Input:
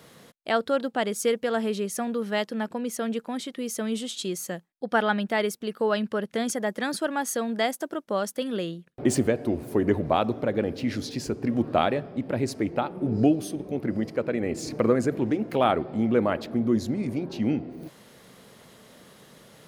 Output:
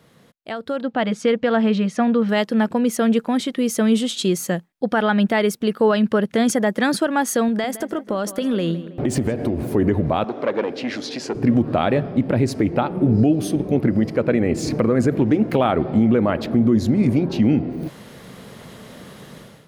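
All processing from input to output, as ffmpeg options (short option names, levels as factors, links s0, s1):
-filter_complex "[0:a]asettb=1/sr,asplit=3[s0][s1][s2];[s0]atrim=end=0.824[s3];[s1]atrim=start=0.82:end=2.29,asetpts=PTS-STARTPTS,afade=t=in:d=0.004:c=qsin,afade=t=out:st=1.466:d=0.004:c=qsin,lowpass=3900,bandreject=f=400:w=5[s4];[s2]atrim=start=2.286[s5];[s3][s4]acrossfade=d=0.004:c1=hsin:c2=qsin[s6];[s6][s5]acrossfade=d=0.004:c1=qsin:c2=hsin,asettb=1/sr,asplit=3[s7][s8][s9];[s7]atrim=end=7.484[s10];[s8]atrim=start=7.48:end=9.69,asetpts=PTS-STARTPTS,afade=t=in:d=0.004:c=qsin,afade=t=out:st=2.206:d=0.004:c=qsin,acompressor=threshold=0.0355:ratio=6:attack=3.2:release=140:knee=1:detection=peak,asplit=2[s11][s12];[s12]adelay=161,lowpass=f=2600:p=1,volume=0.2,asplit=2[s13][s14];[s14]adelay=161,lowpass=f=2600:p=1,volume=0.54,asplit=2[s15][s16];[s16]adelay=161,lowpass=f=2600:p=1,volume=0.54,asplit=2[s17][s18];[s18]adelay=161,lowpass=f=2600:p=1,volume=0.54,asplit=2[s19][s20];[s20]adelay=161,lowpass=f=2600:p=1,volume=0.54[s21];[s11][s13][s15][s17][s19][s21]amix=inputs=6:normalize=0,atrim=end_sample=97461[s22];[s9]atrim=start=9.686[s23];[s10][s22]acrossfade=d=0.004:c1=hsin:c2=qsin[s24];[s24][s23]acrossfade=d=0.004:c1=qsin:c2=hsin,asettb=1/sr,asplit=3[s25][s26][s27];[s25]atrim=end=10.244[s28];[s26]atrim=start=10.24:end=11.35,asetpts=PTS-STARTPTS,afade=t=in:d=0.004:c=qsin,afade=t=out:st=1.106:d=0.004:c=qsin,acompressor=mode=upward:threshold=0.0355:ratio=2.5:attack=3.2:release=140:knee=2.83:detection=peak,aeval=exprs='(tanh(11.2*val(0)+0.45)-tanh(0.45))/11.2':c=same,highpass=390,lowpass=7000[s29];[s27]atrim=start=11.346[s30];[s28][s29]acrossfade=d=0.004:c1=hsin:c2=qsin[s31];[s31][s30]acrossfade=d=0.004:c1=qsin:c2=hsin,bass=f=250:g=5,treble=f=4000:g=-4,alimiter=limit=0.133:level=0:latency=1:release=150,dynaudnorm=f=570:g=3:m=5.31,volume=0.631"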